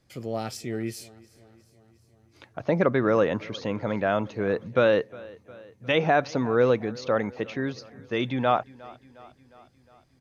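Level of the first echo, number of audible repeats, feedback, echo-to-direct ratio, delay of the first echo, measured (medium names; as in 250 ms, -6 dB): -22.0 dB, 3, 60%, -20.0 dB, 358 ms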